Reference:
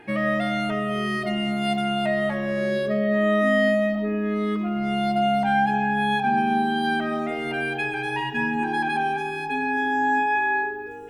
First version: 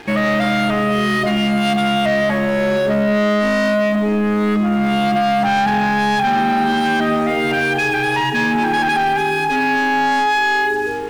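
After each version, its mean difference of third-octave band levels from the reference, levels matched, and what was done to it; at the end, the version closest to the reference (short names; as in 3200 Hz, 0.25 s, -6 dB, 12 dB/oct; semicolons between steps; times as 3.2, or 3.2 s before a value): 6.5 dB: sample leveller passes 3; limiter -16 dBFS, peak gain reduction 6 dB; gain +3.5 dB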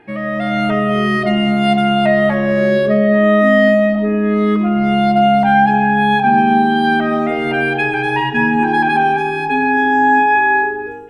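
2.5 dB: high shelf 4200 Hz -10.5 dB; AGC gain up to 10.5 dB; gain +1 dB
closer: second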